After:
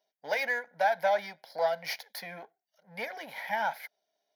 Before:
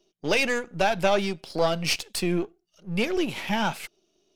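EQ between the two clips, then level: HPF 560 Hz 12 dB/oct; band shelf 5200 Hz -10 dB; fixed phaser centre 1800 Hz, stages 8; 0.0 dB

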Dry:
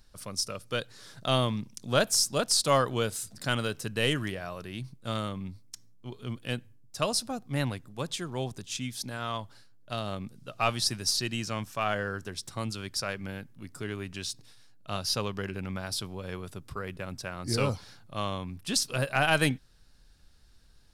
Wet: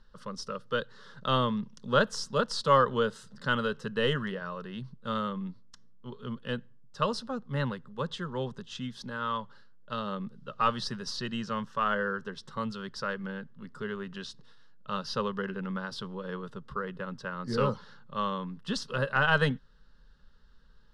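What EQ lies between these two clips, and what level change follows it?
synth low-pass 2600 Hz, resonance Q 2.1; fixed phaser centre 470 Hz, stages 8; +3.0 dB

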